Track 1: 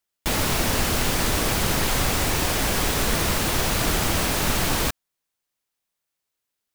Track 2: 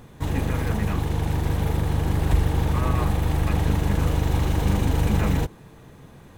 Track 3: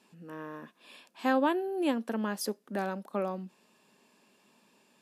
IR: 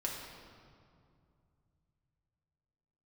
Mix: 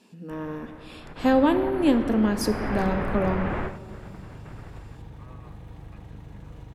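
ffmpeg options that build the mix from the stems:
-filter_complex "[0:a]lowpass=f=2000:w=0.5412,lowpass=f=2000:w=1.3066,alimiter=limit=0.126:level=0:latency=1:release=73,adelay=50,volume=0.841,afade=t=in:st=1.03:d=0.23:silence=0.281838,afade=t=in:st=2.39:d=0.29:silence=0.446684,afade=t=out:st=3.63:d=0.23:silence=0.237137[s0];[1:a]equalizer=f=120:t=o:w=0.67:g=10,acompressor=threshold=0.0398:ratio=5,adelay=2450,volume=0.251,asplit=2[s1][s2];[s2]volume=0.316[s3];[2:a]equalizer=f=1300:w=0.49:g=-8,acontrast=67,volume=1.12,asplit=3[s4][s5][s6];[s5]volume=0.531[s7];[s6]apad=whole_len=299541[s8];[s0][s8]sidechaingate=range=0.0224:threshold=0.00112:ratio=16:detection=peak[s9];[3:a]atrim=start_sample=2205[s10];[s3][s7]amix=inputs=2:normalize=0[s11];[s11][s10]afir=irnorm=-1:irlink=0[s12];[s9][s1][s4][s12]amix=inputs=4:normalize=0,highshelf=f=7600:g=-11"

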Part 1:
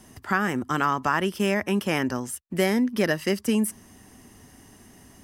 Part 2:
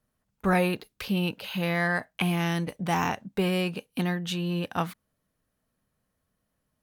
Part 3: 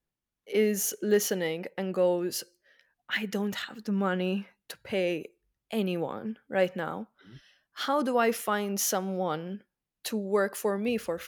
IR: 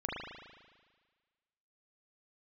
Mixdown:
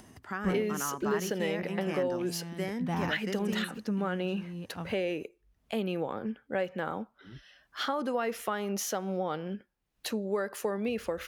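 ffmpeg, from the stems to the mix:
-filter_complex "[0:a]volume=0.237[s0];[1:a]lowshelf=f=380:g=10,volume=0.299[s1];[2:a]asubboost=boost=3:cutoff=73,acompressor=threshold=0.0316:ratio=6,volume=1.33,asplit=2[s2][s3];[s3]apad=whole_len=300872[s4];[s1][s4]sidechaincompress=threshold=0.00631:ratio=4:attack=47:release=535[s5];[s0][s5][s2]amix=inputs=3:normalize=0,highpass=40,highshelf=f=5900:g=-7.5,acompressor=mode=upward:threshold=0.00562:ratio=2.5"

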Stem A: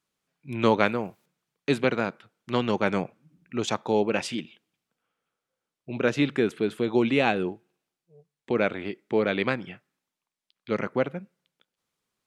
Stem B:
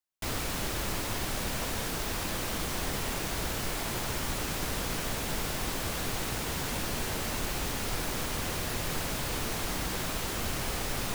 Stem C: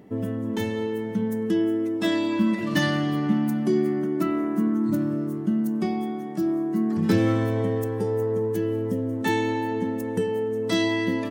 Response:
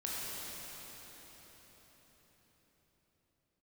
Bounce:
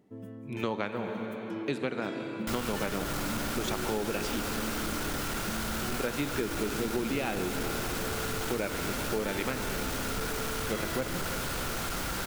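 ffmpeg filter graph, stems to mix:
-filter_complex "[0:a]volume=0.501,asplit=2[s0][s1];[s1]volume=0.335[s2];[1:a]equalizer=f=1400:w=6.5:g=10.5,volume=33.5,asoftclip=hard,volume=0.0299,adelay=2250,volume=1.06[s3];[2:a]volume=0.168[s4];[3:a]atrim=start_sample=2205[s5];[s2][s5]afir=irnorm=-1:irlink=0[s6];[s0][s3][s4][s6]amix=inputs=4:normalize=0,acompressor=threshold=0.0447:ratio=6"

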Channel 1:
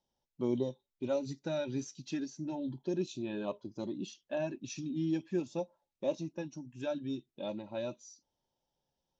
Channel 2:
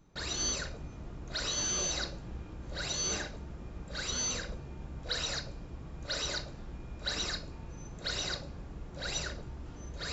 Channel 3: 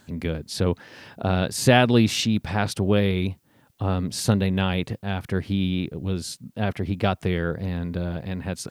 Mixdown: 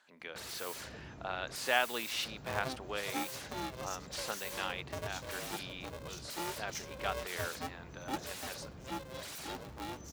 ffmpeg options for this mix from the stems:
-filter_complex "[0:a]aeval=exprs='if(lt(val(0),0),0.708*val(0),val(0))':c=same,aemphasis=mode=production:type=bsi,aeval=exprs='val(0)*sgn(sin(2*PI*260*n/s))':c=same,adelay=2050,volume=0.708[s0];[1:a]aeval=exprs='0.0126*(abs(mod(val(0)/0.0126+3,4)-2)-1)':c=same,adelay=200,volume=0.75[s1];[2:a]highpass=1000,aemphasis=mode=reproduction:type=75kf,volume=0.562[s2];[s0][s1][s2]amix=inputs=3:normalize=0,highpass=84"

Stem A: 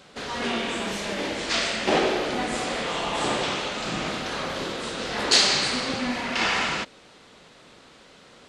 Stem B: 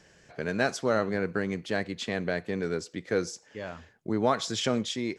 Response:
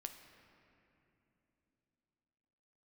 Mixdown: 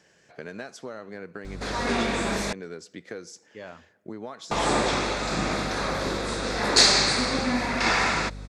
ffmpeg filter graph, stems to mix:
-filter_complex "[0:a]equalizer=f=3000:w=5.8:g=-15,aeval=exprs='val(0)+0.0112*(sin(2*PI*50*n/s)+sin(2*PI*2*50*n/s)/2+sin(2*PI*3*50*n/s)/3+sin(2*PI*4*50*n/s)/4+sin(2*PI*5*50*n/s)/5)':c=same,adelay=1450,volume=1.33,asplit=3[s0][s1][s2];[s0]atrim=end=2.53,asetpts=PTS-STARTPTS,afade=t=out:st=2.526:d=0.004:c=hsin[s3];[s1]atrim=start=2.53:end=4.51,asetpts=PTS-STARTPTS,volume=0[s4];[s2]atrim=start=4.51,asetpts=PTS-STARTPTS,afade=t=in:d=0.004:c=hsin[s5];[s3][s4][s5]concat=n=3:v=0:a=1[s6];[1:a]highpass=f=190:p=1,acompressor=threshold=0.0251:ratio=10,volume=0.75,asplit=2[s7][s8];[s8]volume=0.188[s9];[2:a]atrim=start_sample=2205[s10];[s9][s10]afir=irnorm=-1:irlink=0[s11];[s6][s7][s11]amix=inputs=3:normalize=0"

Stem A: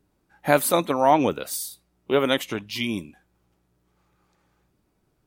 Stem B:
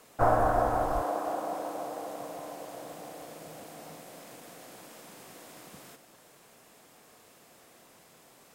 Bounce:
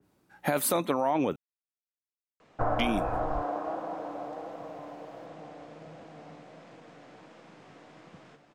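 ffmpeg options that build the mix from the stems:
-filter_complex "[0:a]alimiter=limit=0.224:level=0:latency=1:release=11,highpass=100,adynamicequalizer=threshold=0.01:dfrequency=2600:dqfactor=0.7:tfrequency=2600:tqfactor=0.7:attack=5:release=100:ratio=0.375:range=3:mode=cutabove:tftype=highshelf,volume=1.26,asplit=3[s0][s1][s2];[s0]atrim=end=1.36,asetpts=PTS-STARTPTS,afade=t=out:st=1.356:d=0.004:c=hsin[s3];[s1]atrim=start=1.36:end=2.79,asetpts=PTS-STARTPTS,volume=0[s4];[s2]atrim=start=2.79,asetpts=PTS-STARTPTS,afade=t=in:d=0.004:c=hsin[s5];[s3][s4][s5]concat=n=3:v=0:a=1[s6];[1:a]lowpass=f=7000:w=0.5412,lowpass=f=7000:w=1.3066,bass=f=250:g=3,treble=f=4000:g=-13,flanger=delay=5.9:depth=1.1:regen=73:speed=1.4:shape=triangular,adelay=2400,volume=1.33[s7];[s6][s7]amix=inputs=2:normalize=0,acompressor=threshold=0.0708:ratio=6"

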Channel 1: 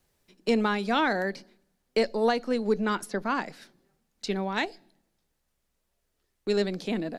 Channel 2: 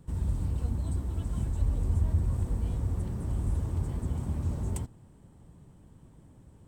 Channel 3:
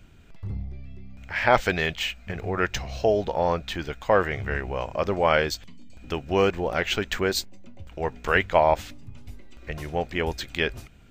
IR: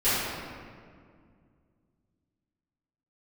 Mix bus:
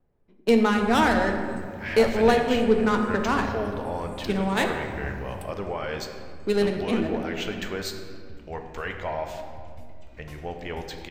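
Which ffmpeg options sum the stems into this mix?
-filter_complex "[0:a]adynamicsmooth=sensitivity=5:basefreq=1000,volume=1.26,asplit=2[s0][s1];[s1]volume=0.133[s2];[1:a]highpass=f=240:p=1,asplit=2[s3][s4];[s4]afreqshift=-0.6[s5];[s3][s5]amix=inputs=2:normalize=1,adelay=650,volume=0.944,asplit=2[s6][s7];[s7]volume=0.0841[s8];[2:a]alimiter=limit=0.168:level=0:latency=1:release=12,adelay=500,volume=0.422,asplit=2[s9][s10];[s10]volume=0.119[s11];[3:a]atrim=start_sample=2205[s12];[s2][s8][s11]amix=inputs=3:normalize=0[s13];[s13][s12]afir=irnorm=-1:irlink=0[s14];[s0][s6][s9][s14]amix=inputs=4:normalize=0"

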